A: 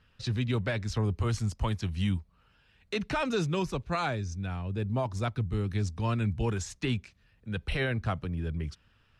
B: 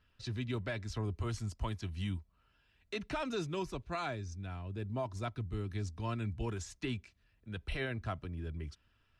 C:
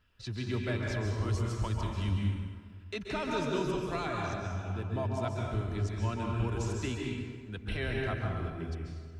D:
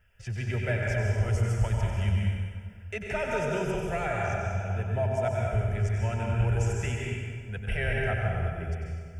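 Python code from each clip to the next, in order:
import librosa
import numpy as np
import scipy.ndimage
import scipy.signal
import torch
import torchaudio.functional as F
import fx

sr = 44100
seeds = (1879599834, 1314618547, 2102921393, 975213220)

y1 = x + 0.34 * np.pad(x, (int(3.0 * sr / 1000.0), 0))[:len(x)]
y1 = y1 * librosa.db_to_amplitude(-7.5)
y2 = fx.rev_plate(y1, sr, seeds[0], rt60_s=1.8, hf_ratio=0.6, predelay_ms=120, drr_db=-1.5)
y2 = y2 * librosa.db_to_amplitude(1.0)
y3 = fx.fixed_phaser(y2, sr, hz=1100.0, stages=6)
y3 = fx.echo_feedback(y3, sr, ms=95, feedback_pct=57, wet_db=-8)
y3 = y3 * librosa.db_to_amplitude(7.0)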